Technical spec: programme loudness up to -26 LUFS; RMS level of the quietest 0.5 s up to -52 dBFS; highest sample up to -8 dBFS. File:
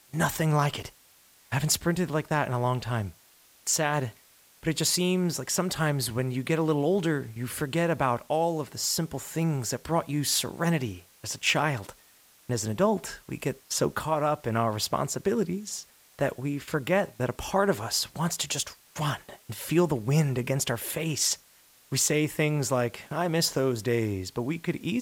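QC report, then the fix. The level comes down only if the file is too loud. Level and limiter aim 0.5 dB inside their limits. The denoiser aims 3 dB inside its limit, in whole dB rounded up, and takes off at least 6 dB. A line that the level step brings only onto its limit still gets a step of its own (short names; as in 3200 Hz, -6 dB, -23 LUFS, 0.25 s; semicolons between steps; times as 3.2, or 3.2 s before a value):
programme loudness -28.0 LUFS: OK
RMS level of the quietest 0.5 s -59 dBFS: OK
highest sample -10.5 dBFS: OK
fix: none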